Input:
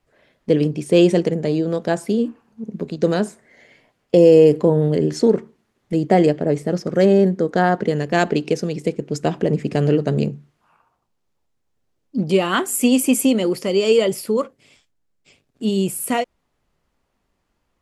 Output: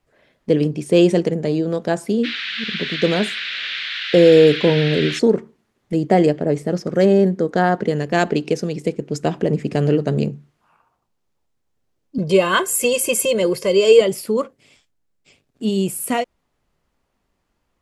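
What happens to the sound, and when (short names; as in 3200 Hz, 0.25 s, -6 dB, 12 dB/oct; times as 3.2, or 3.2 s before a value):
2.23–5.18 band noise 1500–3900 Hz -27 dBFS
12.18–14.01 comb 1.9 ms, depth 95%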